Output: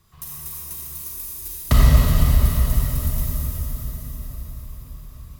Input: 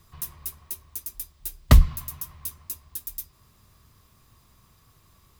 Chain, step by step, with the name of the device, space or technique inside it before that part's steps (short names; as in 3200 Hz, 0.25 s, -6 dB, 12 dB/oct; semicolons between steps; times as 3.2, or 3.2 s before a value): cathedral (reverb RT60 5.5 s, pre-delay 29 ms, DRR -8 dB); gain -3.5 dB